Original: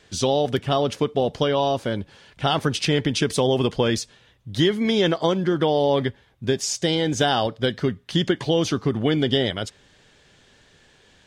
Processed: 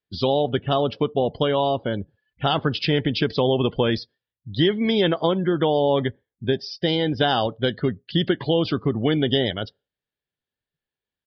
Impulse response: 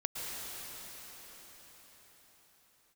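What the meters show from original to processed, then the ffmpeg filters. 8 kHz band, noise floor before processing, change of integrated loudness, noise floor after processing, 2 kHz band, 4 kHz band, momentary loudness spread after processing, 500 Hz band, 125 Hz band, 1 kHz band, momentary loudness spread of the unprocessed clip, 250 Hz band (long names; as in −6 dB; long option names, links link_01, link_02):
below −25 dB, −57 dBFS, 0.0 dB, below −85 dBFS, −0.5 dB, −0.5 dB, 7 LU, 0.0 dB, 0.0 dB, 0.0 dB, 7 LU, 0.0 dB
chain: -af "afftdn=noise_reduction=36:noise_floor=-37,aresample=11025,aresample=44100" -ar 32000 -c:a libvorbis -b:a 128k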